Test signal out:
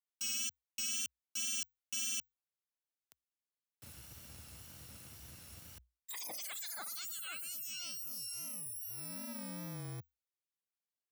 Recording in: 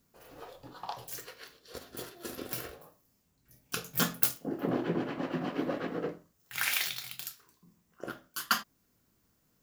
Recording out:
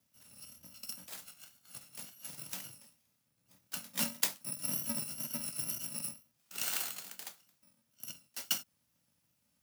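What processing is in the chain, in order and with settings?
FFT order left unsorted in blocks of 128 samples; wow and flutter 48 cents; frequency shift +60 Hz; gain -4.5 dB

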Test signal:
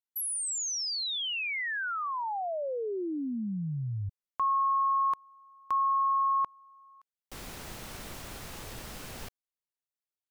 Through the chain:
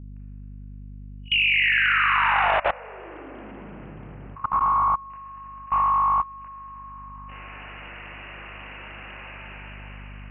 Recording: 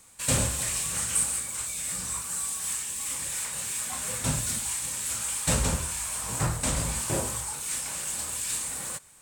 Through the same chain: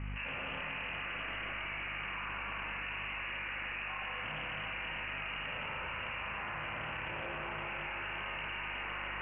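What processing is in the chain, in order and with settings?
spectral dilation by 60 ms; in parallel at -1 dB: negative-ratio compressor -30 dBFS, ratio -1; on the sum: tilt +4.5 dB/oct; hard clip -3.5 dBFS; brick-wall FIR low-pass 2900 Hz; notches 60/120/180/240/300/360/420/480/540 Hz; Schroeder reverb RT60 3.8 s, combs from 26 ms, DRR -5 dB; hum 50 Hz, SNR 14 dB; level quantiser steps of 20 dB; Doppler distortion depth 0.26 ms

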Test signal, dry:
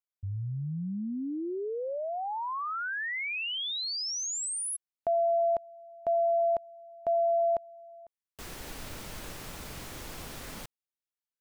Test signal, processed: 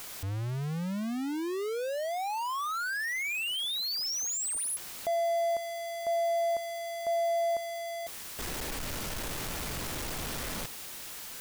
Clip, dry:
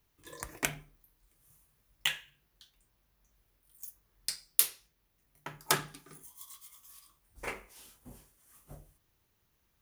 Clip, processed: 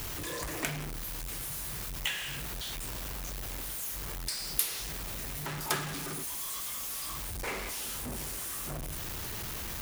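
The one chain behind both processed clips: zero-crossing step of -26.5 dBFS; gain -5.5 dB

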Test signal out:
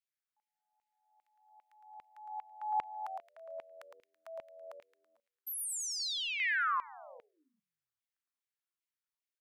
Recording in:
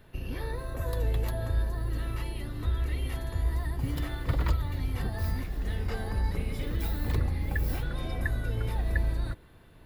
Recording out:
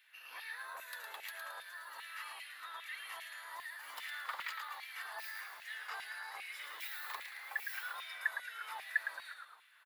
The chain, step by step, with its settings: HPF 680 Hz 12 dB/oct; frequency-shifting echo 0.11 s, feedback 44%, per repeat -86 Hz, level -5.5 dB; LFO high-pass saw down 2.5 Hz 920–2400 Hz; gain -5 dB

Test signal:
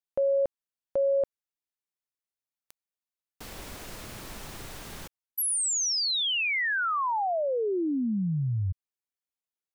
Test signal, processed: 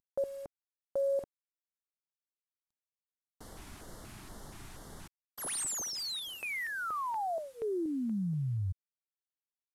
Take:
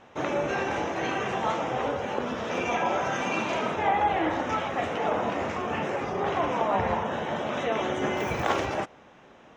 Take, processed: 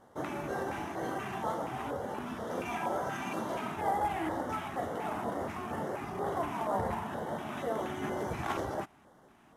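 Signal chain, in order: CVSD 64 kbps; LFO notch square 2.1 Hz 510–2500 Hz; bell 4400 Hz -5.5 dB 2.8 oct; gain -5 dB

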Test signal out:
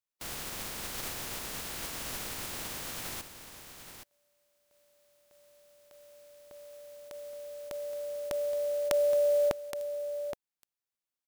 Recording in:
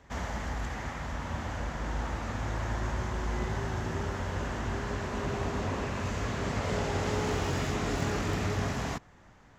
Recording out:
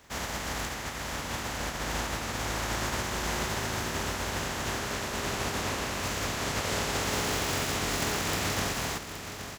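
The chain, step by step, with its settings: spectral contrast lowered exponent 0.5; echo 0.821 s -9.5 dB

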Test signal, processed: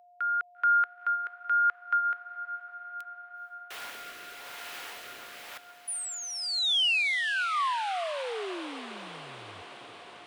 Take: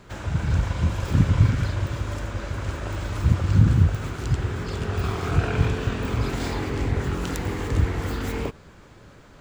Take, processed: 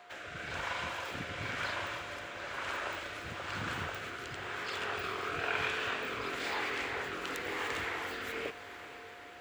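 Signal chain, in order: three-band isolator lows -13 dB, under 350 Hz, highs -20 dB, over 3100 Hz; rotary speaker horn 1 Hz; whine 710 Hz -53 dBFS; tilt +4.5 dB/oct; diffused feedback echo 0.466 s, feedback 74%, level -14 dB

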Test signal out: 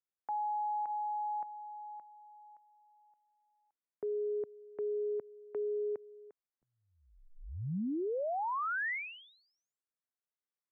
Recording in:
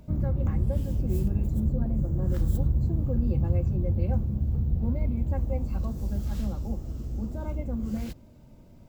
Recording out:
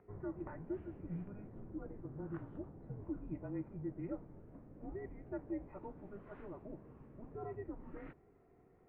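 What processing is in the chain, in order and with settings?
mistuned SSB -200 Hz 360–2200 Hz; limiter -28 dBFS; gain -3.5 dB

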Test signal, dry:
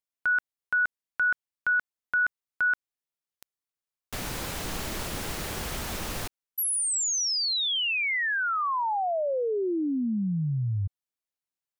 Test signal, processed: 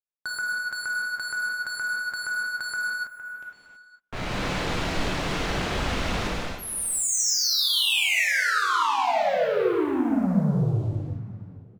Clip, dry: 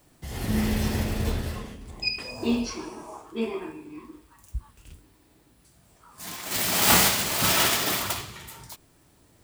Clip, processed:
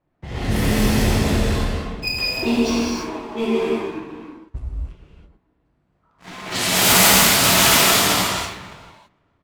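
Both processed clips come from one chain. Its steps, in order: on a send: feedback echo 0.461 s, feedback 30%, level -18.5 dB; on the sum: low-pass opened by the level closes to 1700 Hz, open at -20.5 dBFS; sample leveller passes 3; non-linear reverb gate 0.35 s flat, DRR -5 dB; gain -6.5 dB

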